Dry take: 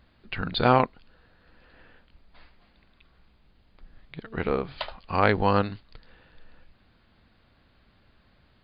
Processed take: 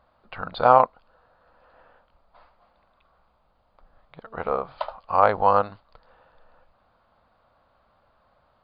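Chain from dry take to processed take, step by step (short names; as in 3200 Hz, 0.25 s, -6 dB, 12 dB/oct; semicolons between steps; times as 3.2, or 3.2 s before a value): band shelf 830 Hz +15 dB; gain -8.5 dB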